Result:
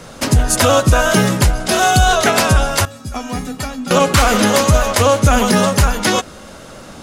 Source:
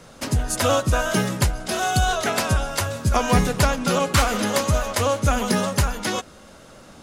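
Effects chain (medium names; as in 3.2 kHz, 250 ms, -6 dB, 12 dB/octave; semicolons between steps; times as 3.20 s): 2.85–3.91 s: feedback comb 260 Hz, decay 0.21 s, harmonics odd, mix 90%; loudness maximiser +11 dB; trim -1 dB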